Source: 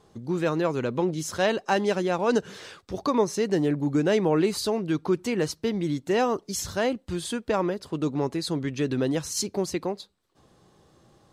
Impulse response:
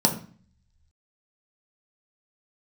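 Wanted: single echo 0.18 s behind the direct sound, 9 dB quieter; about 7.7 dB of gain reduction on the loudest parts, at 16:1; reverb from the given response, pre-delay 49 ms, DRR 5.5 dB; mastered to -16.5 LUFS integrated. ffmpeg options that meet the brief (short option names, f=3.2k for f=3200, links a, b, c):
-filter_complex "[0:a]acompressor=threshold=-25dB:ratio=16,aecho=1:1:180:0.355,asplit=2[a][b];[1:a]atrim=start_sample=2205,adelay=49[c];[b][c]afir=irnorm=-1:irlink=0,volume=-19dB[d];[a][d]amix=inputs=2:normalize=0,volume=10.5dB"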